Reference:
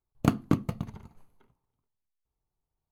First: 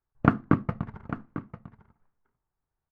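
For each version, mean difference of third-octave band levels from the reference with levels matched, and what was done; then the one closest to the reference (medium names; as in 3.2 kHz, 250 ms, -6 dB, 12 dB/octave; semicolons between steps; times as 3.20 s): 5.0 dB: resonant low-pass 1.6 kHz, resonance Q 2.7; in parallel at -6.5 dB: crossover distortion -47 dBFS; on the sum: delay 848 ms -13.5 dB; trim -1 dB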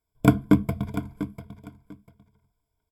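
4.0 dB: rippled EQ curve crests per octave 1.7, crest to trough 17 dB; on a send: feedback delay 695 ms, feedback 20%, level -13 dB; on the sum: dynamic bell 5.3 kHz, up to -4 dB, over -53 dBFS, Q 1.1; trim +3 dB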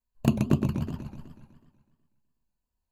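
7.0 dB: rippled EQ curve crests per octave 1.4, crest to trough 12 dB; touch-sensitive flanger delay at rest 4 ms, full sweep at -20.5 dBFS; modulated delay 124 ms, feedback 59%, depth 219 cents, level -5 dB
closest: second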